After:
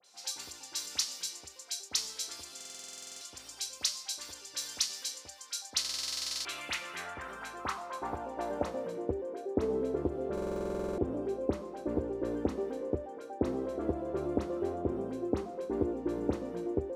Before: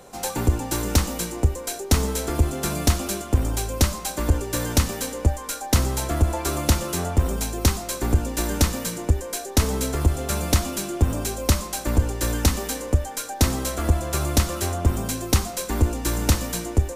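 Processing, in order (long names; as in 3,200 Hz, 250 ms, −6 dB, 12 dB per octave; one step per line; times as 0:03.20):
band-pass filter sweep 4,900 Hz → 400 Hz, 0:05.66–0:09.24
all-pass dispersion highs, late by 46 ms, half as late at 2,200 Hz
buffer that repeats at 0:02.56/0:05.80/0:10.33, samples 2,048, times 13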